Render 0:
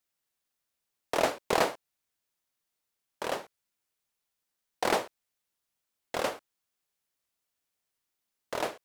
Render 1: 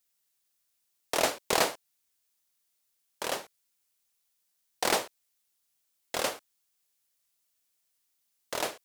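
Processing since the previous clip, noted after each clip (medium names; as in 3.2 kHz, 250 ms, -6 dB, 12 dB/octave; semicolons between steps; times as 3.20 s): treble shelf 3 kHz +11 dB; trim -2 dB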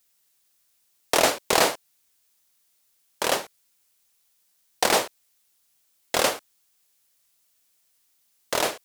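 peak limiter -15 dBFS, peak gain reduction 9 dB; trim +9 dB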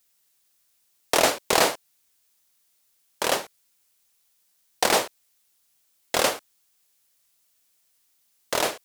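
no audible change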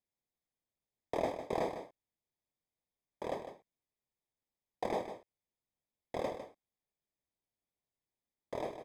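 boxcar filter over 31 samples; peaking EQ 410 Hz -3 dB 2.6 oct; delay 153 ms -10 dB; trim -6.5 dB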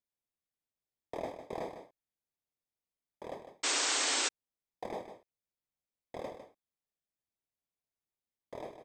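painted sound noise, 3.63–4.29 s, 250–8600 Hz -26 dBFS; trim -5 dB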